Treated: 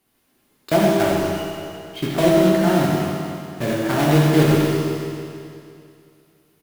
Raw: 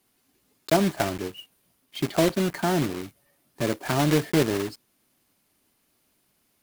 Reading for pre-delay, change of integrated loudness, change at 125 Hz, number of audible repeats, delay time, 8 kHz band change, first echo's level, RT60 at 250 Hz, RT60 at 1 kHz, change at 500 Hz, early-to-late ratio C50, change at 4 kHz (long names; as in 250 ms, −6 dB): 12 ms, +6.5 dB, +9.0 dB, 1, 94 ms, +2.5 dB, −6.5 dB, 2.5 s, 2.5 s, +7.5 dB, −2.0 dB, +4.0 dB